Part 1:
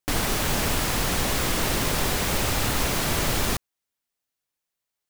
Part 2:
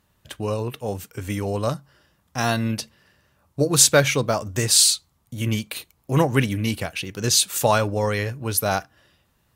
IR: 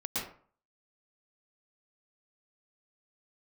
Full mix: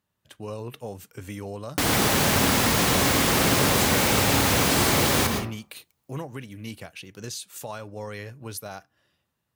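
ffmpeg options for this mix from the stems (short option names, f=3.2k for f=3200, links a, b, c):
-filter_complex "[0:a]adelay=1700,volume=-0.5dB,asplit=2[a][b];[b]volume=-3.5dB[c];[1:a]dynaudnorm=f=100:g=11:m=12dB,alimiter=limit=-11dB:level=0:latency=1:release=454,volume=-13dB[d];[2:a]atrim=start_sample=2205[e];[c][e]afir=irnorm=-1:irlink=0[f];[a][d][f]amix=inputs=3:normalize=0,highpass=85"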